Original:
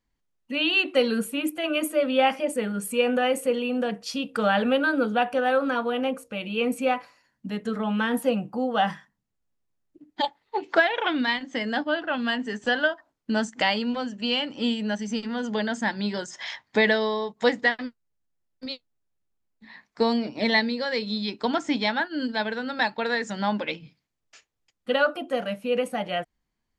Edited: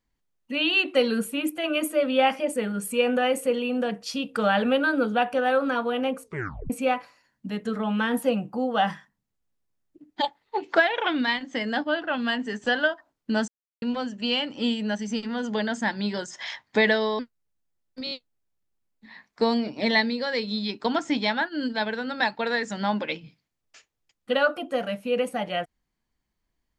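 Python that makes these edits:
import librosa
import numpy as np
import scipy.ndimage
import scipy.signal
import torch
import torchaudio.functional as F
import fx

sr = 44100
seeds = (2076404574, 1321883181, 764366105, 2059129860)

y = fx.edit(x, sr, fx.tape_stop(start_s=6.24, length_s=0.46),
    fx.silence(start_s=13.48, length_s=0.34),
    fx.cut(start_s=17.19, length_s=0.65),
    fx.stutter(start_s=18.7, slice_s=0.02, count=4), tone=tone)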